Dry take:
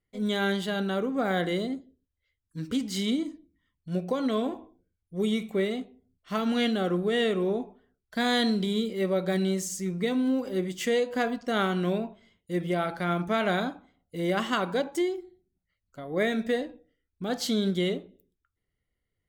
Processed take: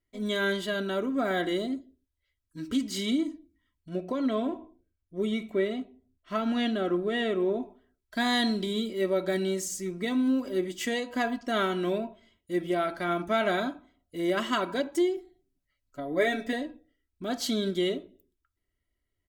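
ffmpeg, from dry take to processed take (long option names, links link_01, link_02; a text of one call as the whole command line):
ffmpeg -i in.wav -filter_complex "[0:a]asettb=1/sr,asplit=3[link_01][link_02][link_03];[link_01]atrim=end=3.894[link_04];[link_02]atrim=start=3.89:end=7.63,asetpts=PTS-STARTPTS,afade=type=in:duration=0.004:curve=qsin,afade=type=out:start_time=3.736:duration=0.004:curve=qsin,highshelf=frequency=4300:gain=-10[link_05];[link_03]atrim=start=7.626[link_06];[link_04][link_05]acrossfade=duration=0.004:curve1=hsin:curve2=qsin[link_07];[link_07][link_06]acrossfade=duration=0.004:curve1=qsin:curve2=hsin,asettb=1/sr,asplit=3[link_08][link_09][link_10];[link_08]atrim=end=15.164[link_11];[link_09]atrim=start=15.16:end=16.53,asetpts=PTS-STARTPTS,afade=type=in:duration=0.004:curve=qsin,afade=type=out:start_time=1.366:duration=0.004:curve=qsin,aecho=1:1:7:0.71,atrim=end_sample=60417[link_12];[link_10]atrim=start=16.526[link_13];[link_11][link_12]acrossfade=duration=0.004:curve1=hsin:curve2=qsin[link_14];[link_14][link_13]acrossfade=duration=0.004:curve1=qsin:curve2=hsin,bandreject=frequency=820:width=12,aecho=1:1:3.1:0.57,volume=-1.5dB" out.wav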